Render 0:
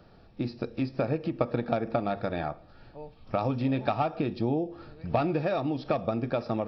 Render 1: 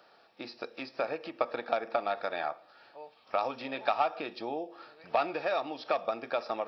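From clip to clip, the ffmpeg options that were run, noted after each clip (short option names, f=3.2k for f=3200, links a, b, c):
-af "highpass=700,volume=2.5dB"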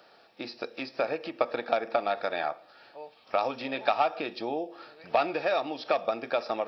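-af "equalizer=f=1.1k:w=1.5:g=-3.5,volume=4.5dB"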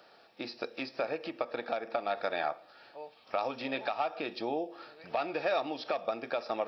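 -af "alimiter=limit=-17.5dB:level=0:latency=1:release=314,volume=-1.5dB"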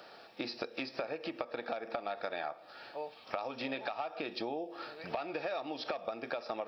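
-af "acompressor=threshold=-40dB:ratio=6,volume=5.5dB"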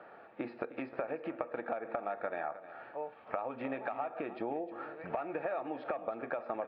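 -af "lowpass=f=2k:w=0.5412,lowpass=f=2k:w=1.3066,aecho=1:1:310:0.188,volume=1dB"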